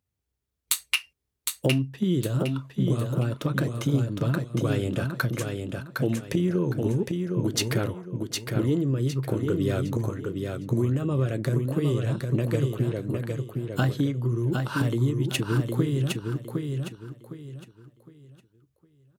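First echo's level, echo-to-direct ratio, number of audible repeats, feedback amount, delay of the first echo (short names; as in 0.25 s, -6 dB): -4.5 dB, -4.0 dB, 3, 30%, 0.76 s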